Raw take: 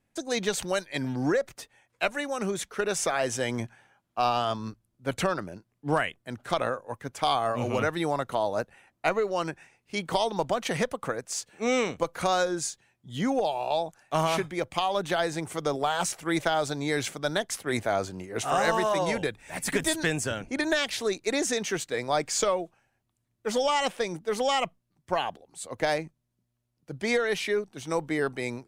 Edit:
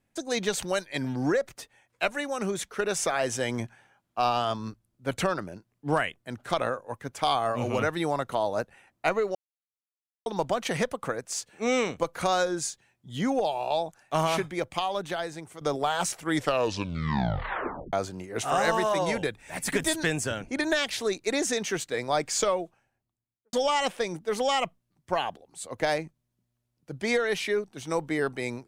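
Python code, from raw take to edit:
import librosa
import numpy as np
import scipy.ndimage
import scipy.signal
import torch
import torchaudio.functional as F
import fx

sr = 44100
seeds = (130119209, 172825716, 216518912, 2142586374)

y = fx.studio_fade_out(x, sr, start_s=22.59, length_s=0.94)
y = fx.edit(y, sr, fx.silence(start_s=9.35, length_s=0.91),
    fx.fade_out_to(start_s=14.57, length_s=1.04, floor_db=-12.5),
    fx.tape_stop(start_s=16.26, length_s=1.67), tone=tone)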